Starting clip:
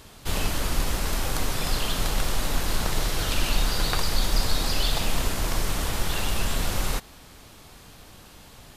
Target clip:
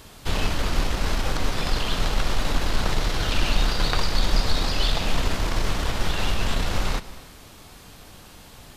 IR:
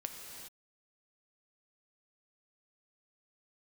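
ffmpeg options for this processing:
-filter_complex "[0:a]acrossover=split=6000[link_01][link_02];[link_02]acompressor=threshold=-50dB:ratio=4:attack=1:release=60[link_03];[link_01][link_03]amix=inputs=2:normalize=0,aeval=exprs='0.335*(cos(1*acos(clip(val(0)/0.335,-1,1)))-cos(1*PI/2))+0.00668*(cos(6*acos(clip(val(0)/0.335,-1,1)))-cos(6*PI/2))+0.015*(cos(8*acos(clip(val(0)/0.335,-1,1)))-cos(8*PI/2))':channel_layout=same,asplit=2[link_04][link_05];[1:a]atrim=start_sample=2205,asetrate=57330,aresample=44100[link_06];[link_05][link_06]afir=irnorm=-1:irlink=0,volume=-6dB[link_07];[link_04][link_07]amix=inputs=2:normalize=0"

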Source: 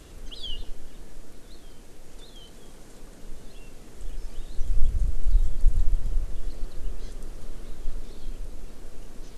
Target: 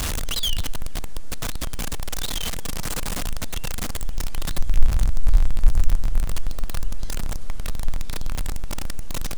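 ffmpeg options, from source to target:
ffmpeg -i in.wav -af "aeval=exprs='val(0)+0.5*0.0794*sgn(val(0))':channel_layout=same,equalizer=frequency=380:width=1.1:gain=-8,volume=3dB" out.wav

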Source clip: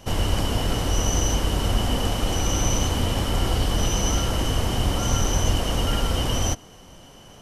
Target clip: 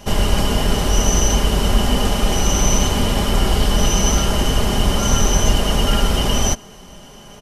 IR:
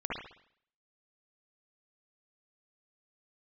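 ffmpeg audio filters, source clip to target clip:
-af "aecho=1:1:4.9:0.49,volume=5.5dB"

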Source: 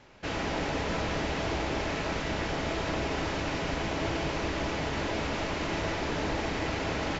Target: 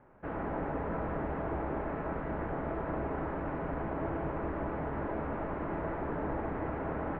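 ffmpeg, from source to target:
ffmpeg -i in.wav -af "lowpass=frequency=1500:width=0.5412,lowpass=frequency=1500:width=1.3066,bandreject=frequency=50:width_type=h:width=6,bandreject=frequency=100:width_type=h:width=6,volume=-3dB" out.wav

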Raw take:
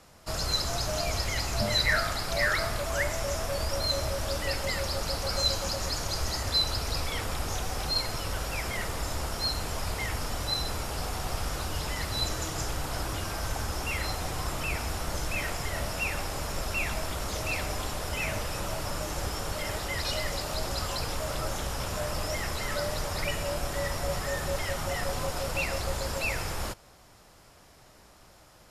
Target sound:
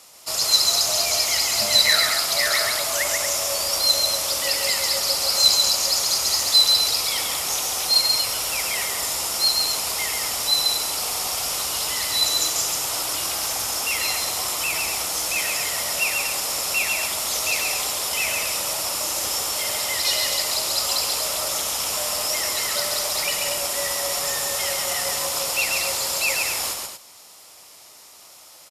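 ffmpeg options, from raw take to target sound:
ffmpeg -i in.wav -filter_complex "[0:a]equalizer=frequency=1600:width=3.6:gain=-8.5,aeval=exprs='0.2*(cos(1*acos(clip(val(0)/0.2,-1,1)))-cos(1*PI/2))+0.0355*(cos(2*acos(clip(val(0)/0.2,-1,1)))-cos(2*PI/2))+0.00112*(cos(8*acos(clip(val(0)/0.2,-1,1)))-cos(8*PI/2))':channel_layout=same,highpass=frequency=1000:poles=1,highshelf=frequency=4300:gain=9.5,asplit=2[link_01][link_02];[link_02]aecho=0:1:137|236.2:0.631|0.355[link_03];[link_01][link_03]amix=inputs=2:normalize=0,volume=6.5dB" out.wav

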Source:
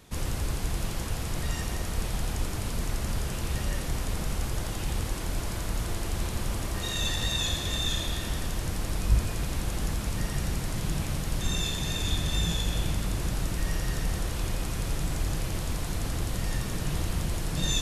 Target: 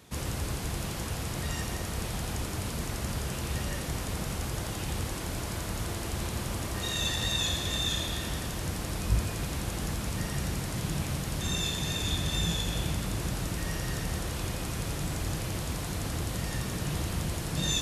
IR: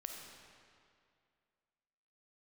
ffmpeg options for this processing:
-af "highpass=63"

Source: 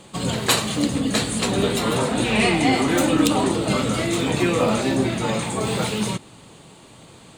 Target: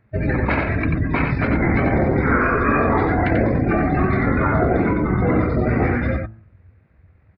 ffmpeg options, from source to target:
ffmpeg -i in.wav -filter_complex "[0:a]afftdn=noise_reduction=23:noise_floor=-31,lowpass=frequency=4100:width=0.5412,lowpass=frequency=4100:width=1.3066,bandreject=frequency=98.71:width_type=h:width=4,bandreject=frequency=197.42:width_type=h:width=4,bandreject=frequency=296.13:width_type=h:width=4,bandreject=frequency=394.84:width_type=h:width=4,bandreject=frequency=493.55:width_type=h:width=4,bandreject=frequency=592.26:width_type=h:width=4,bandreject=frequency=690.97:width_type=h:width=4,bandreject=frequency=789.68:width_type=h:width=4,bandreject=frequency=888.39:width_type=h:width=4,bandreject=frequency=987.1:width_type=h:width=4,bandreject=frequency=1085.81:width_type=h:width=4,bandreject=frequency=1184.52:width_type=h:width=4,bandreject=frequency=1283.23:width_type=h:width=4,bandreject=frequency=1381.94:width_type=h:width=4,bandreject=frequency=1480.65:width_type=h:width=4,bandreject=frequency=1579.36:width_type=h:width=4,bandreject=frequency=1678.07:width_type=h:width=4,bandreject=frequency=1776.78:width_type=h:width=4,bandreject=frequency=1875.49:width_type=h:width=4,bandreject=frequency=1974.2:width_type=h:width=4,bandreject=frequency=2072.91:width_type=h:width=4,bandreject=frequency=2171.62:width_type=h:width=4,bandreject=frequency=2270.33:width_type=h:width=4,bandreject=frequency=2369.04:width_type=h:width=4,bandreject=frequency=2467.75:width_type=h:width=4,bandreject=frequency=2566.46:width_type=h:width=4,bandreject=frequency=2665.17:width_type=h:width=4,bandreject=frequency=2763.88:width_type=h:width=4,bandreject=frequency=2862.59:width_type=h:width=4,bandreject=frequency=2961.3:width_type=h:width=4,bandreject=frequency=3060.01:width_type=h:width=4,bandreject=frequency=3158.72:width_type=h:width=4,bandreject=frequency=3257.43:width_type=h:width=4,bandreject=frequency=3356.14:width_type=h:width=4,bandreject=frequency=3454.85:width_type=h:width=4,afftfilt=real='re*lt(hypot(re,im),0.501)':imag='im*lt(hypot(re,im),0.501)':win_size=1024:overlap=0.75,alimiter=limit=-15dB:level=0:latency=1:release=195,asetrate=24750,aresample=44100,atempo=1.7818,asplit=2[link_01][link_02];[link_02]aecho=0:1:90:0.596[link_03];[link_01][link_03]amix=inputs=2:normalize=0,volume=7.5dB" out.wav

